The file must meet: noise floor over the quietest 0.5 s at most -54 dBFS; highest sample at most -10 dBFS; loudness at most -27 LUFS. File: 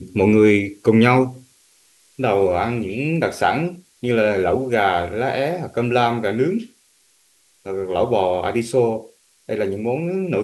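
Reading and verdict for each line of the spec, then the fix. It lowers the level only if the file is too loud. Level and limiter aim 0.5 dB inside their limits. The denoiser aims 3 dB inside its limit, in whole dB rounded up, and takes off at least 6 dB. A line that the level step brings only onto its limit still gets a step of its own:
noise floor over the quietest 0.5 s -59 dBFS: pass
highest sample -2.0 dBFS: fail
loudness -19.5 LUFS: fail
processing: trim -8 dB; peak limiter -10.5 dBFS

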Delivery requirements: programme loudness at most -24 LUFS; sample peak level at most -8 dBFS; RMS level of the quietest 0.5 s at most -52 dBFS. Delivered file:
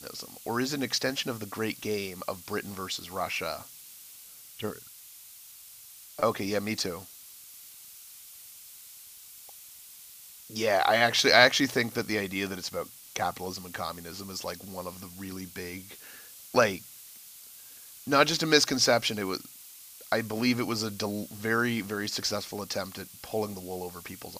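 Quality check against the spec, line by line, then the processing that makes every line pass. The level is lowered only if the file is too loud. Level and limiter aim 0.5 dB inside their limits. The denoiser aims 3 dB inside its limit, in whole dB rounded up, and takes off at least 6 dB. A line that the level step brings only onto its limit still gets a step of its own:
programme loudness -28.5 LUFS: pass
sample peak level -3.0 dBFS: fail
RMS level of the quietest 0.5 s -50 dBFS: fail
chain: noise reduction 6 dB, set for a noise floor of -50 dBFS; peak limiter -8.5 dBFS

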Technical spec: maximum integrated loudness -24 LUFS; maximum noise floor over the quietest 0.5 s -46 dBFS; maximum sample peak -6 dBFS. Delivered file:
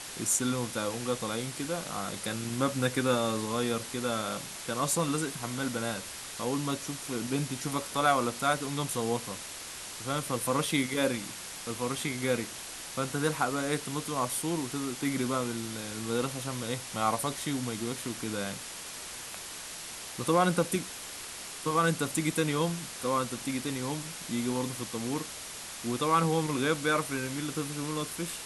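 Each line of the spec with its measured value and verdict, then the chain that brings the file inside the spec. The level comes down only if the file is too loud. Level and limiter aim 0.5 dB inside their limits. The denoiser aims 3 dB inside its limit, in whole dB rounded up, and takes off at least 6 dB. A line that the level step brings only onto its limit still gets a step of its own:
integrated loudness -31.5 LUFS: pass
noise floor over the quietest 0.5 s -42 dBFS: fail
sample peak -13.0 dBFS: pass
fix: noise reduction 7 dB, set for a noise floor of -42 dBFS

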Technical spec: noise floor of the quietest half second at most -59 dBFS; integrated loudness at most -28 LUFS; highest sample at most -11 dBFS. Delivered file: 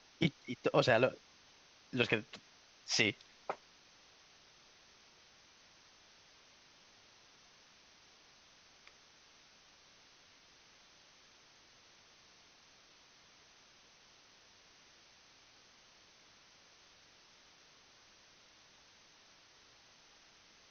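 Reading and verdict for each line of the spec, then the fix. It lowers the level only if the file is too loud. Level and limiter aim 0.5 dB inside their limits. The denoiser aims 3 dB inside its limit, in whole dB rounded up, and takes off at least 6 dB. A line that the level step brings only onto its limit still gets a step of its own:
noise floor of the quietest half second -64 dBFS: pass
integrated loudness -34.5 LUFS: pass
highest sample -13.5 dBFS: pass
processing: none needed

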